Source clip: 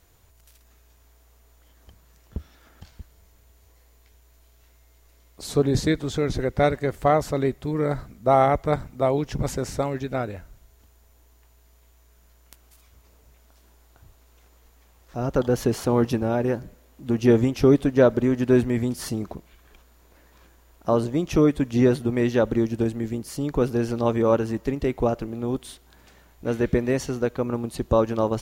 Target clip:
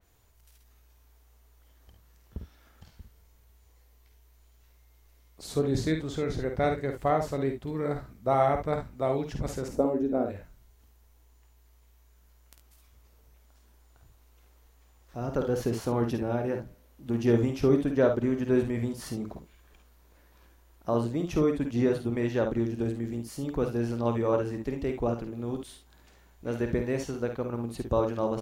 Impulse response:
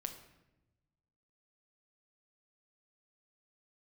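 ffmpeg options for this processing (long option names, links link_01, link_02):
-filter_complex "[0:a]asettb=1/sr,asplit=3[link_01][link_02][link_03];[link_01]atrim=end=9.684[link_04];[link_02]atrim=start=9.68:end=10.26,asetpts=PTS-STARTPTS,afade=type=in:duration=0.004:curve=qsin,afade=type=out:start_time=0.576:duration=0.004:curve=qsin,equalizer=frequency=125:width_type=o:width=1:gain=-10,equalizer=frequency=250:width_type=o:width=1:gain=11,equalizer=frequency=500:width_type=o:width=1:gain=7,equalizer=frequency=2000:width_type=o:width=1:gain=-11,equalizer=frequency=4000:width_type=o:width=1:gain=-10,equalizer=frequency=8000:width_type=o:width=1:gain=-4[link_05];[link_03]atrim=start=10.256[link_06];[link_04][link_05]acrossfade=duration=0.004:curve1=hsin:curve2=qsin[link_07];[link_07][link_06]acrossfade=duration=0.004:curve1=qsin:curve2=hsin,aecho=1:1:51|69:0.447|0.299,adynamicequalizer=threshold=0.00708:dfrequency=3500:dqfactor=0.7:tfrequency=3500:tqfactor=0.7:attack=5:release=100:ratio=0.375:range=1.5:mode=cutabove:tftype=highshelf,volume=-7dB"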